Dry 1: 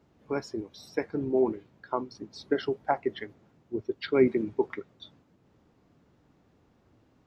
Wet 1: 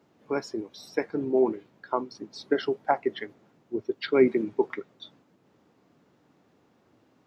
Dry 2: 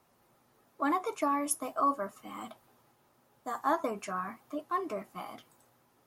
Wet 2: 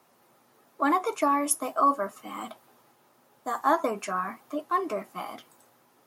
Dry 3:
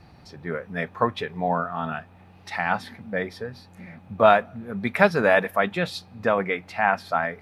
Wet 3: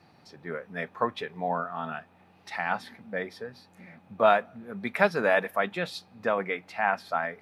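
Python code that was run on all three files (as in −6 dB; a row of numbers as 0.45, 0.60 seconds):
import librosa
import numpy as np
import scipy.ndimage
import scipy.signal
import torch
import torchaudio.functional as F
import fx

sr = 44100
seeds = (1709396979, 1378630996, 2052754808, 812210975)

y = scipy.signal.sosfilt(scipy.signal.bessel(2, 200.0, 'highpass', norm='mag', fs=sr, output='sos'), x)
y = y * 10.0 ** (-30 / 20.0) / np.sqrt(np.mean(np.square(y)))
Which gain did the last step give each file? +3.0, +6.0, −4.5 decibels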